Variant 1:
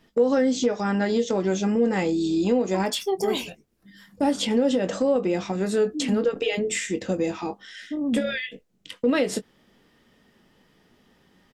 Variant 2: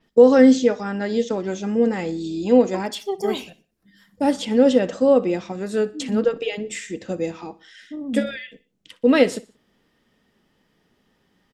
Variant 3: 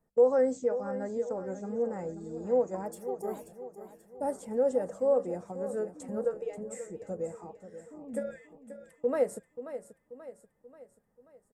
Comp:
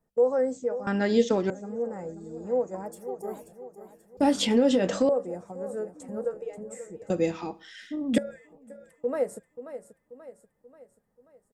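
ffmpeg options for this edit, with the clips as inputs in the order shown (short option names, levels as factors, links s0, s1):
-filter_complex "[1:a]asplit=2[s0][s1];[2:a]asplit=4[s2][s3][s4][s5];[s2]atrim=end=0.872[s6];[s0]atrim=start=0.868:end=1.502[s7];[s3]atrim=start=1.498:end=4.172[s8];[0:a]atrim=start=4.168:end=5.092[s9];[s4]atrim=start=5.088:end=7.102[s10];[s1]atrim=start=7.098:end=8.182[s11];[s5]atrim=start=8.178[s12];[s6][s7]acrossfade=d=0.004:c1=hsin:c2=hsin[s13];[s13][s8]acrossfade=d=0.004:c1=hsin:c2=hsin[s14];[s14][s9]acrossfade=d=0.004:c1=hsin:c2=hsin[s15];[s15][s10]acrossfade=d=0.004:c1=hsin:c2=hsin[s16];[s16][s11]acrossfade=d=0.004:c1=hsin:c2=hsin[s17];[s17][s12]acrossfade=d=0.004:c1=hsin:c2=hsin"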